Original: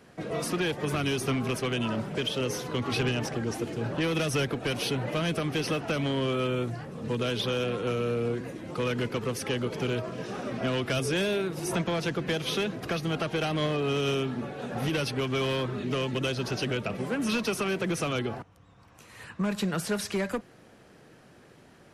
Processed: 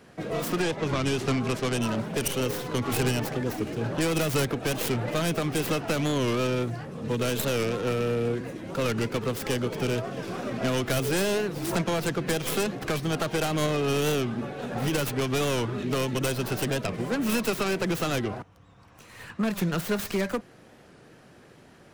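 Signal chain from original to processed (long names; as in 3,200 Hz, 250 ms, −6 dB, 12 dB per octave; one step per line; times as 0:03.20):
stylus tracing distortion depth 0.33 ms
0:00.61–0:01.81: low-pass filter 5,500 Hz → 10,000 Hz 12 dB per octave
wow of a warped record 45 rpm, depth 160 cents
level +2 dB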